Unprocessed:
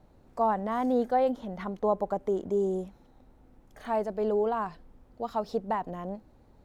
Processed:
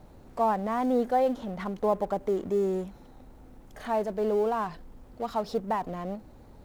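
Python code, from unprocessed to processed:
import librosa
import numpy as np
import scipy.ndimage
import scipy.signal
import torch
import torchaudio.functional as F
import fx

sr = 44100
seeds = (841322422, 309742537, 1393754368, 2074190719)

y = fx.law_mismatch(x, sr, coded='mu')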